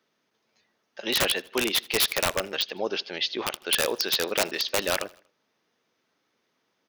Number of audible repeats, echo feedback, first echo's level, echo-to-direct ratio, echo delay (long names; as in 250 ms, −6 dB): 2, 51%, −23.5 dB, −22.5 dB, 79 ms